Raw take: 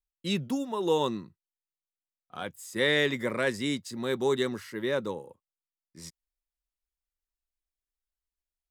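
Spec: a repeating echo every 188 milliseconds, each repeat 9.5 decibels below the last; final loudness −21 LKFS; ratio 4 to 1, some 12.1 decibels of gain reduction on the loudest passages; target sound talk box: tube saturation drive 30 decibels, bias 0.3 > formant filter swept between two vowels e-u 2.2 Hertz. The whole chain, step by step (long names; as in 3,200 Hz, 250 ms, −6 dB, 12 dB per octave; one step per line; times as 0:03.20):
downward compressor 4 to 1, threshold −35 dBFS
repeating echo 188 ms, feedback 33%, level −9.5 dB
tube saturation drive 30 dB, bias 0.3
formant filter swept between two vowels e-u 2.2 Hz
level +28.5 dB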